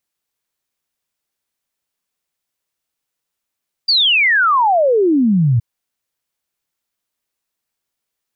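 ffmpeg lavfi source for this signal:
ffmpeg -f lavfi -i "aevalsrc='0.316*clip(min(t,1.72-t)/0.01,0,1)*sin(2*PI*4800*1.72/log(110/4800)*(exp(log(110/4800)*t/1.72)-1))':duration=1.72:sample_rate=44100" out.wav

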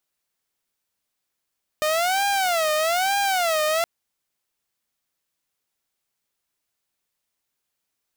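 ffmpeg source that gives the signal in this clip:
ffmpeg -f lavfi -i "aevalsrc='0.141*(2*mod((708*t-96/(2*PI*1.1)*sin(2*PI*1.1*t)),1)-1)':duration=2.02:sample_rate=44100" out.wav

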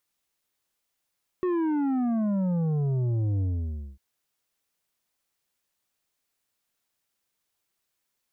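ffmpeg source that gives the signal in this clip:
ffmpeg -f lavfi -i "aevalsrc='0.0631*clip((2.55-t)/0.57,0,1)*tanh(2.51*sin(2*PI*370*2.55/log(65/370)*(exp(log(65/370)*t/2.55)-1)))/tanh(2.51)':duration=2.55:sample_rate=44100" out.wav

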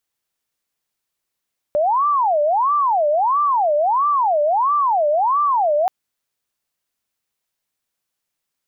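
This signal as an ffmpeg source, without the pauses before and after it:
ffmpeg -f lavfi -i "aevalsrc='0.2*sin(2*PI*(883.5*t-296.5/(2*PI*1.5)*sin(2*PI*1.5*t)))':duration=4.13:sample_rate=44100" out.wav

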